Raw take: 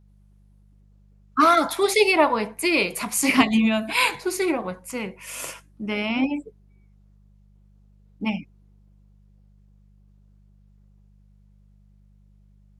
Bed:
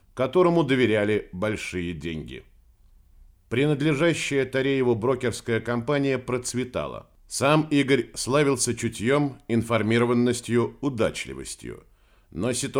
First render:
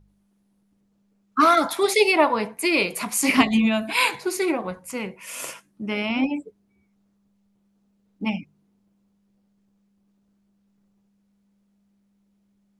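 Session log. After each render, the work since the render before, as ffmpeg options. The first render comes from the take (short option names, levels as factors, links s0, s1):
-af "bandreject=f=50:t=h:w=4,bandreject=f=100:t=h:w=4,bandreject=f=150:t=h:w=4"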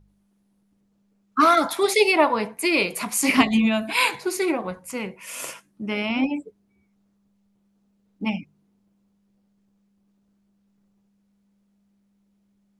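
-af anull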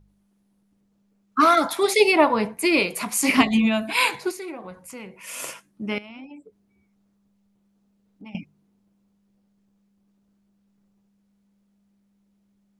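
-filter_complex "[0:a]asettb=1/sr,asplit=3[s0][s1][s2];[s0]atrim=end=2.004[s3];[s1]atrim=start=2:end=2.8,asetpts=PTS-STARTPTS,afade=t=in:d=0.004:c=qsin,afade=t=out:st=0.796:d=0.004:c=qsin,lowshelf=f=230:g=8[s4];[s2]atrim=start=2.796[s5];[s3][s4]acrossfade=d=0.004:c1=hsin:c2=qsin[s6];[s6][s5]acrossfade=d=0.004:c1=qsin:c2=hsin,asettb=1/sr,asplit=3[s7][s8][s9];[s7]atrim=end=4.314[s10];[s8]atrim=start=4.31:end=5.24,asetpts=PTS-STARTPTS,afade=t=in:d=0.004:c=qsin,afade=t=out:st=0.926:d=0.004:c=qsin,acompressor=threshold=0.00891:ratio=2:attack=3.2:release=140:knee=1:detection=peak[s11];[s9]atrim=start=5.236[s12];[s10][s11]acrossfade=d=0.004:c1=hsin:c2=qsin[s13];[s13][s12]acrossfade=d=0.004:c1=qsin:c2=hsin,asettb=1/sr,asplit=3[s14][s15][s16];[s14]atrim=end=5.984[s17];[s15]atrim=start=5.98:end=8.35,asetpts=PTS-STARTPTS,afade=t=in:d=0.004:c=qsin,afade=t=out:st=2.366:d=0.004:c=qsin,acompressor=threshold=0.00562:ratio=3:attack=3.2:release=140:knee=1:detection=peak[s18];[s16]atrim=start=8.346[s19];[s17][s18]acrossfade=d=0.004:c1=hsin:c2=qsin[s20];[s20][s19]acrossfade=d=0.004:c1=qsin:c2=hsin"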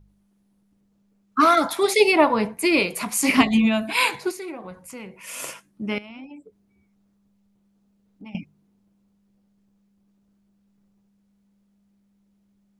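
-af "lowshelf=f=160:g=3.5"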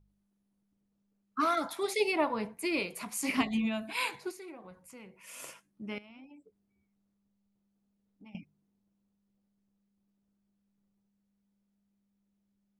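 -af "volume=0.237"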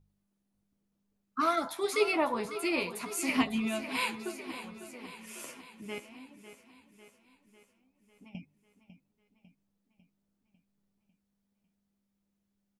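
-filter_complex "[0:a]asplit=2[s0][s1];[s1]adelay=12,volume=0.422[s2];[s0][s2]amix=inputs=2:normalize=0,aecho=1:1:549|1098|1647|2196|2745|3294:0.237|0.135|0.077|0.0439|0.025|0.0143"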